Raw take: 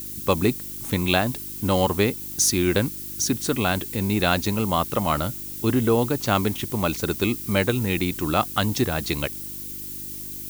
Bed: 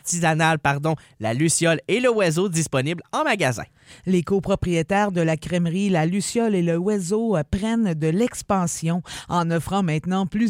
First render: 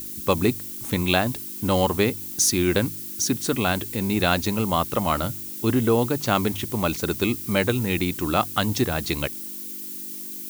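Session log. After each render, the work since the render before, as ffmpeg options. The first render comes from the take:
-af "bandreject=f=50:t=h:w=4,bandreject=f=100:t=h:w=4,bandreject=f=150:t=h:w=4"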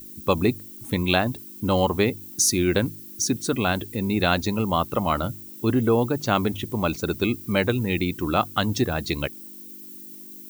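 -af "afftdn=nr=11:nf=-35"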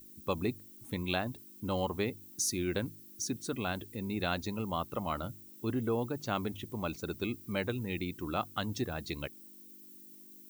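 -af "volume=-12dB"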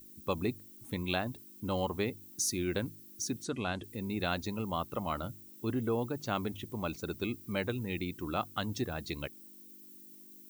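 -filter_complex "[0:a]asettb=1/sr,asplit=3[a][b][c];[a]atrim=end=3.444[d];[b]atrim=start=3.44:end=3.84,asetpts=PTS-STARTPTS,afade=t=in:d=0.004:c=qsin,afade=t=out:st=0.396:d=0.004:c=qsin,lowpass=f=8.8k:w=0.5412,lowpass=f=8.8k:w=1.3066[e];[c]atrim=start=3.836[f];[d][e]acrossfade=d=0.004:c1=hsin:c2=qsin[g];[g][f]acrossfade=d=0.004:c1=qsin:c2=hsin"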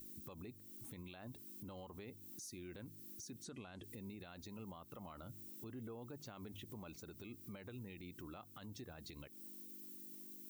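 -af "acompressor=threshold=-42dB:ratio=6,alimiter=level_in=18dB:limit=-24dB:level=0:latency=1:release=66,volume=-18dB"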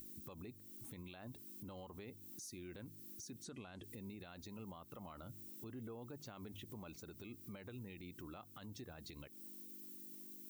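-af "acompressor=mode=upward:threshold=-56dB:ratio=2.5"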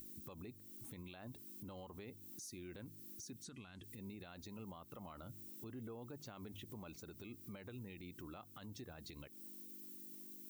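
-filter_complex "[0:a]asettb=1/sr,asplit=3[a][b][c];[a]atrim=end=3.334[d];[b]atrim=start=3.33:end=3.99,asetpts=PTS-STARTPTS,afade=t=in:d=0.004:c=qsin,afade=t=out:st=0.656:d=0.004:c=qsin,equalizer=f=570:t=o:w=1.4:g=-10[e];[c]atrim=start=3.986[f];[d][e]acrossfade=d=0.004:c1=hsin:c2=qsin[g];[g][f]acrossfade=d=0.004:c1=qsin:c2=hsin"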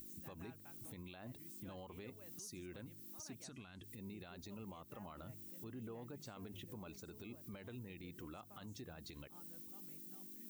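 -filter_complex "[1:a]volume=-43dB[a];[0:a][a]amix=inputs=2:normalize=0"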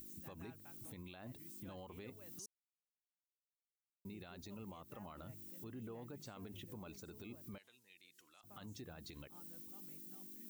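-filter_complex "[0:a]asettb=1/sr,asplit=3[a][b][c];[a]atrim=end=7.584[d];[b]atrim=start=7.58:end=8.44,asetpts=PTS-STARTPTS,afade=t=in:d=0.004:c=qsin,afade=t=out:st=0.856:d=0.004:c=qsin,bandpass=f=5.9k:t=q:w=0.75[e];[c]atrim=start=8.436[f];[d][e]acrossfade=d=0.004:c1=hsin:c2=qsin[g];[g][f]acrossfade=d=0.004:c1=qsin:c2=hsin,asplit=3[h][i][j];[h]atrim=end=2.46,asetpts=PTS-STARTPTS,afade=t=out:st=2.456:d=0.004:c=hsin[k];[i]atrim=start=2.46:end=4.05,asetpts=PTS-STARTPTS,volume=0[l];[j]atrim=start=4.05,asetpts=PTS-STARTPTS,afade=t=in:d=0.004:c=hsin[m];[k][l][m]concat=n=3:v=0:a=1"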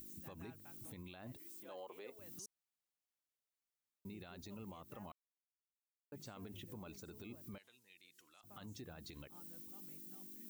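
-filter_complex "[0:a]asettb=1/sr,asplit=3[a][b][c];[a]atrim=end=1.374[d];[b]atrim=start=1.37:end=2.19,asetpts=PTS-STARTPTS,afade=t=in:d=0.004:c=qsin,afade=t=out:st=0.816:d=0.004:c=qsin,highpass=f=480:t=q:w=1.6[e];[c]atrim=start=2.186[f];[d][e]acrossfade=d=0.004:c1=hsin:c2=qsin[g];[g][f]acrossfade=d=0.004:c1=qsin:c2=hsin,asplit=3[h][i][j];[h]atrim=end=5.12,asetpts=PTS-STARTPTS,afade=t=out:st=5.116:d=0.004:c=hsin[k];[i]atrim=start=5.12:end=6.12,asetpts=PTS-STARTPTS,volume=0[l];[j]atrim=start=6.12,asetpts=PTS-STARTPTS,afade=t=in:d=0.004:c=hsin[m];[k][l][m]concat=n=3:v=0:a=1"

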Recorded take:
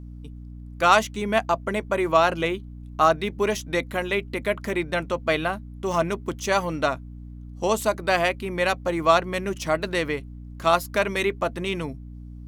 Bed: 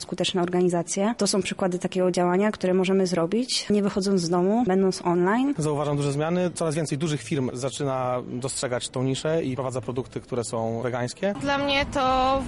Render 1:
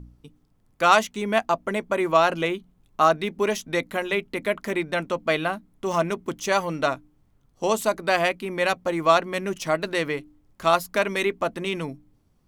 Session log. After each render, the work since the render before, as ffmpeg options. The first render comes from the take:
-af "bandreject=f=60:t=h:w=4,bandreject=f=120:t=h:w=4,bandreject=f=180:t=h:w=4,bandreject=f=240:t=h:w=4,bandreject=f=300:t=h:w=4"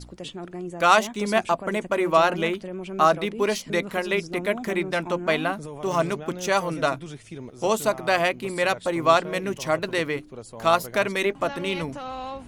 -filter_complex "[1:a]volume=-12.5dB[a];[0:a][a]amix=inputs=2:normalize=0"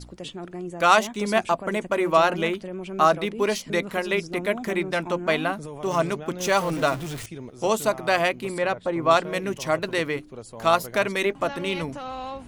-filter_complex "[0:a]asettb=1/sr,asplit=3[a][b][c];[a]atrim=end=6.404[d];[b]atrim=start=6.4:end=7.26,asetpts=PTS-STARTPTS,afade=t=in:d=0.004:c=qsin,afade=t=out:st=0.856:d=0.004:c=qsin,aeval=exprs='val(0)+0.5*0.0266*sgn(val(0))':c=same[e];[c]atrim=start=7.256[f];[d][e]acrossfade=d=0.004:c1=hsin:c2=qsin[g];[g][f]acrossfade=d=0.004:c1=qsin:c2=hsin,asettb=1/sr,asplit=3[h][i][j];[h]atrim=end=8.584[k];[i]atrim=start=8.58:end=9.11,asetpts=PTS-STARTPTS,afade=t=in:d=0.004:c=qsin,afade=t=out:st=0.526:d=0.004:c=qsin,lowpass=f=1.5k:p=1[l];[j]atrim=start=9.106[m];[k][l]acrossfade=d=0.004:c1=hsin:c2=qsin[n];[n][m]acrossfade=d=0.004:c1=qsin:c2=hsin"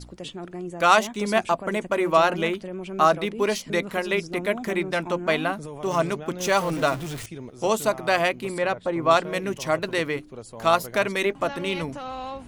-af anull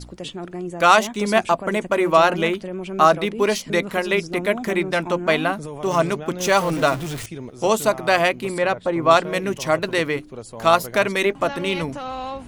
-af "volume=4dB,alimiter=limit=-2dB:level=0:latency=1"

